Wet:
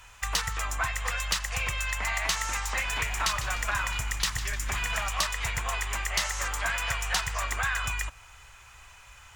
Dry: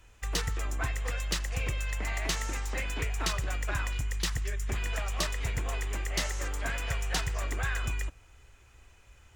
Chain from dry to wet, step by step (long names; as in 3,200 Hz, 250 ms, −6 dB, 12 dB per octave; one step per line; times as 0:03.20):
drawn EQ curve 150 Hz 0 dB, 340 Hz −8 dB, 1,000 Hz +13 dB, 1,700 Hz +10 dB
downward compressor 2 to 1, threshold −30 dBFS, peak gain reduction 7.5 dB
0:02.59–0:05.09: echo with shifted repeats 151 ms, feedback 48%, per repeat −86 Hz, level −12.5 dB
level +1 dB